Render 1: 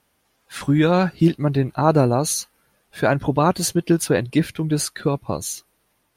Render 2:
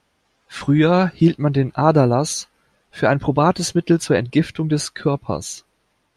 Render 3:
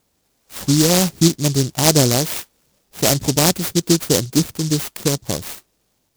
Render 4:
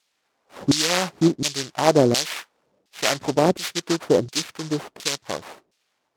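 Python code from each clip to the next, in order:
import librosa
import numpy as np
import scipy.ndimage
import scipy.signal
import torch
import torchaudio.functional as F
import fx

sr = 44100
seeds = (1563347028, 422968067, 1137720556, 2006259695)

y1 = scipy.signal.sosfilt(scipy.signal.butter(2, 6700.0, 'lowpass', fs=sr, output='sos'), x)
y1 = F.gain(torch.from_numpy(y1), 2.0).numpy()
y2 = fx.noise_mod_delay(y1, sr, seeds[0], noise_hz=5400.0, depth_ms=0.23)
y3 = fx.filter_lfo_bandpass(y2, sr, shape='saw_down', hz=1.4, low_hz=340.0, high_hz=3700.0, q=0.92)
y3 = F.gain(torch.from_numpy(y3), 3.0).numpy()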